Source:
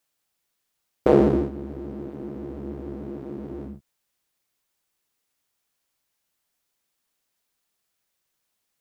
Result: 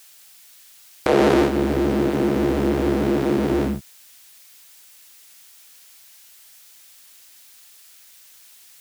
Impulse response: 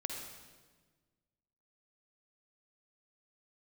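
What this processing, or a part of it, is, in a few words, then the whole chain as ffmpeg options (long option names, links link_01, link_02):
mastering chain: -filter_complex "[0:a]equalizer=frequency=1100:width_type=o:width=0.29:gain=-2.5,acrossover=split=260|550[link_01][link_02][link_03];[link_01]acompressor=threshold=-37dB:ratio=4[link_04];[link_02]acompressor=threshold=-30dB:ratio=4[link_05];[link_03]acompressor=threshold=-32dB:ratio=4[link_06];[link_04][link_05][link_06]amix=inputs=3:normalize=0,acompressor=threshold=-30dB:ratio=2,tiltshelf=frequency=1100:gain=-7.5,alimiter=level_in=28dB:limit=-1dB:release=50:level=0:latency=1,volume=-6dB"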